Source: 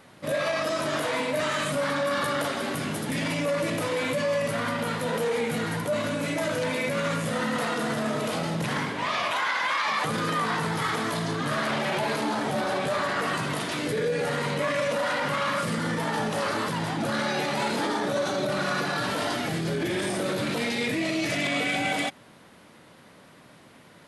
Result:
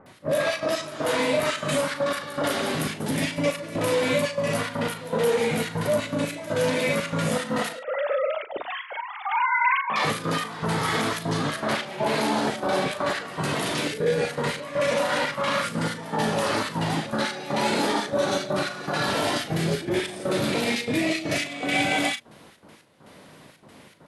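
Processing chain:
0:07.73–0:09.90: three sine waves on the formant tracks
mains-hum notches 60/120/180/240/300 Hz
gate pattern "x.xx.x..xxx" 120 BPM −12 dB
double-tracking delay 38 ms −10 dB
multiband delay without the direct sound lows, highs 60 ms, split 1,400 Hz
level +4 dB

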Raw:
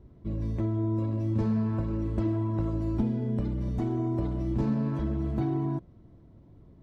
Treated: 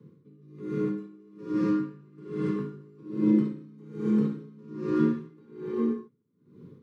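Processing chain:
frequency shifter +91 Hz
Butterworth band-reject 700 Hz, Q 1.5
reverb whose tail is shaped and stops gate 320 ms flat, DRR −5.5 dB
tremolo with a sine in dB 1.2 Hz, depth 28 dB

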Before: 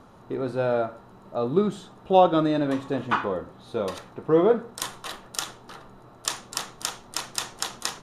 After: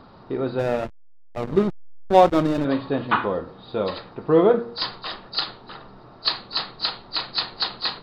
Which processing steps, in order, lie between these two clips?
hearing-aid frequency compression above 3,700 Hz 4 to 1
hum removal 117.6 Hz, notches 5
0:00.59–0:02.65: slack as between gear wheels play −20.5 dBFS
level +3.5 dB

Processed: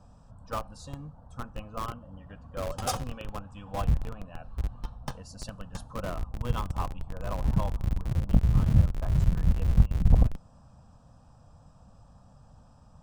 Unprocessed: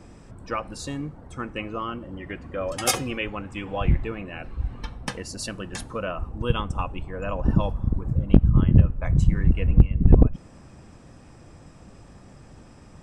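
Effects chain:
high-shelf EQ 5,900 Hz −10.5 dB
phaser with its sweep stopped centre 870 Hz, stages 4
in parallel at −6.5 dB: comparator with hysteresis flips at −28.5 dBFS
on the sum: level −5 dB

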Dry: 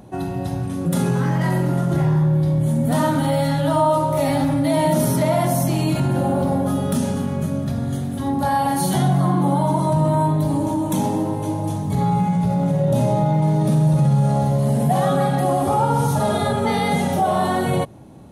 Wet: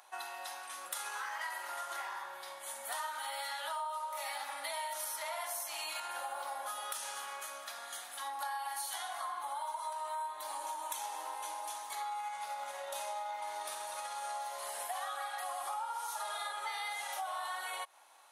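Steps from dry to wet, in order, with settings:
high-pass filter 970 Hz 24 dB per octave
downward compressor, threshold −35 dBFS, peak gain reduction 14.5 dB
level −2 dB

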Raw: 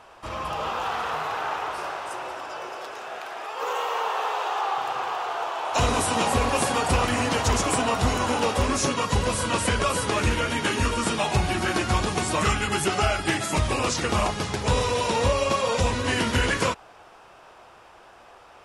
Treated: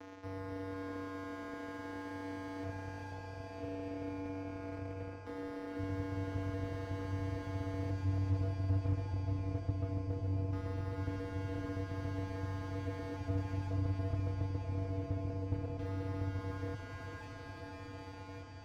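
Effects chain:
running median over 15 samples
auto-filter low-pass square 0.19 Hz 280–3,600 Hz
reversed playback
downward compressor 4 to 1, threshold −37 dBFS, peak gain reduction 17 dB
reversed playback
bass and treble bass −6 dB, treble +14 dB
channel vocoder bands 4, square 95.7 Hz
on a send: feedback delay with all-pass diffusion 508 ms, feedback 79%, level −8.5 dB
on the sum: formants moved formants −3 semitones
slew-rate limiting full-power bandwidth 4 Hz
level +3.5 dB

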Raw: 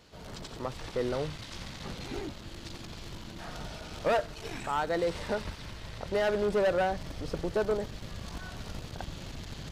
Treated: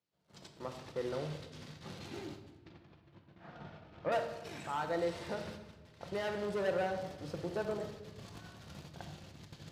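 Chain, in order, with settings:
high-pass filter 78 Hz 24 dB per octave
hum removal 119.4 Hz, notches 39
noise gate −42 dBFS, range −26 dB
0:02.58–0:04.12: low-pass filter 2,200 Hz 12 dB per octave
rectangular room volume 700 cubic metres, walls mixed, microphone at 0.82 metres
level −7.5 dB

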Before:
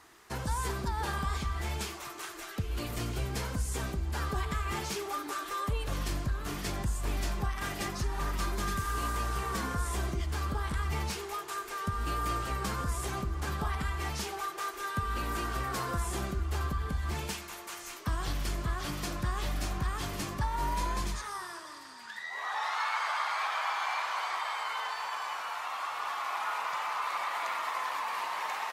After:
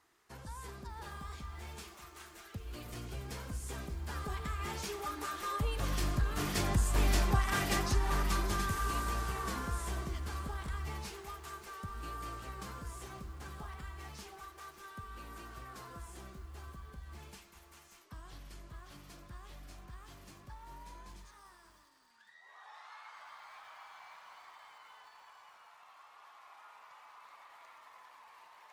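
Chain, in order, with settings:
source passing by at 0:07.21, 5 m/s, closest 4.6 metres
feedback echo at a low word length 587 ms, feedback 35%, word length 10 bits, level −13 dB
level +4 dB

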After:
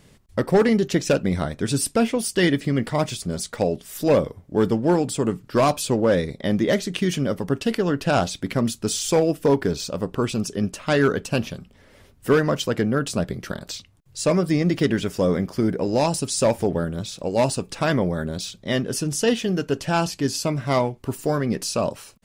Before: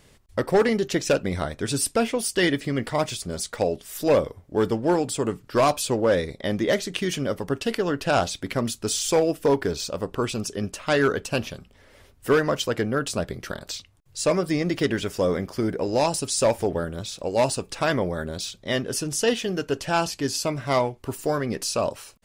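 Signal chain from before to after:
parametric band 180 Hz +7 dB 1.4 octaves

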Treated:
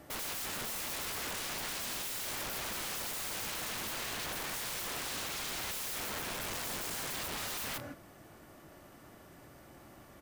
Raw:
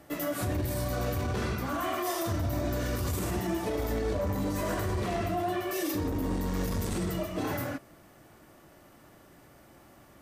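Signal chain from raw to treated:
single-tap delay 161 ms −10.5 dB
wrap-around overflow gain 34 dB

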